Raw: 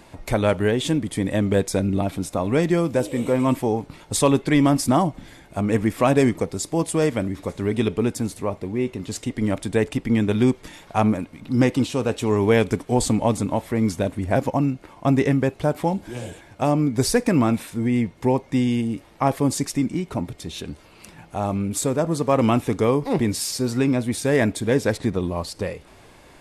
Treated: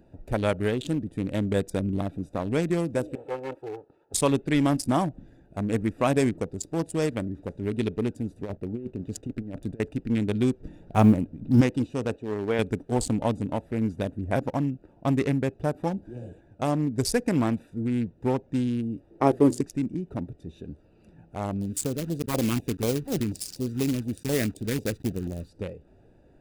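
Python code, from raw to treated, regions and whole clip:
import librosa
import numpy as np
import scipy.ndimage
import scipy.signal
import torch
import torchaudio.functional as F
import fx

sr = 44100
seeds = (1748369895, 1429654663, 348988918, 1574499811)

y = fx.chain(x, sr, fx.lower_of_two(delay_ms=2.3),
    fx.highpass(hz=740.0, slope=12),
    fx.tilt_eq(slope=-4.5), at=(3.15, 4.14))
y = fx.chain(y, sr, fx.over_compress(threshold_db=-25.0, ratio=-0.5),
    fx.backlash(play_db=-37.5), at=(8.41, 9.8))
y = fx.chain(y, sr, fx.block_float(bits=7),
    fx.low_shelf(hz=460.0, db=9.5), at=(10.6, 11.61))
y = fx.chain(y, sr, fx.lowpass(hz=1500.0, slope=6),
    fx.low_shelf(hz=230.0, db=-11.0), at=(12.16, 12.59))
y = fx.chain(y, sr, fx.peak_eq(hz=370.0, db=14.0, octaves=0.83),
    fx.hum_notches(base_hz=60, count=4), at=(19.1, 19.61))
y = fx.chain(y, sr, fx.block_float(bits=3),
    fx.filter_lfo_notch(shape='saw_down', hz=4.1, low_hz=500.0, high_hz=1600.0, q=0.77), at=(21.61, 25.5))
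y = fx.wiener(y, sr, points=41)
y = fx.high_shelf(y, sr, hz=3600.0, db=6.5)
y = y * 10.0 ** (-5.0 / 20.0)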